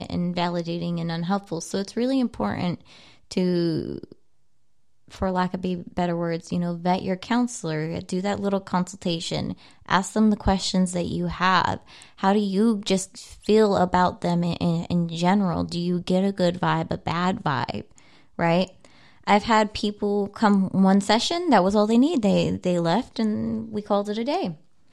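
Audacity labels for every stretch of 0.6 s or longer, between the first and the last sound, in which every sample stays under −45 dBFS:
4.130000	5.080000	silence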